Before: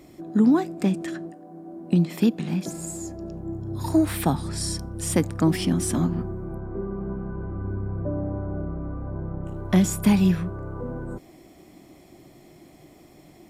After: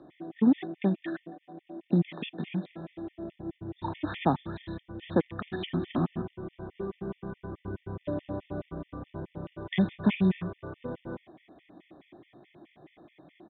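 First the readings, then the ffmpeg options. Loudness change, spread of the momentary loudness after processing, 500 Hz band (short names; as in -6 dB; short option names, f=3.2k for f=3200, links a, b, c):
-7.0 dB, 15 LU, -5.0 dB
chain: -filter_complex "[0:a]highpass=f=97:p=1,lowshelf=f=170:g=-7,acrossover=split=540|1100[a][b][c];[b]acrusher=bits=2:mode=log:mix=0:aa=0.000001[d];[a][d][c]amix=inputs=3:normalize=0,aresample=8000,aresample=44100,afftfilt=real='re*gt(sin(2*PI*4.7*pts/sr)*(1-2*mod(floor(b*sr/1024/1800),2)),0)':imag='im*gt(sin(2*PI*4.7*pts/sr)*(1-2*mod(floor(b*sr/1024/1800),2)),0)':win_size=1024:overlap=0.75"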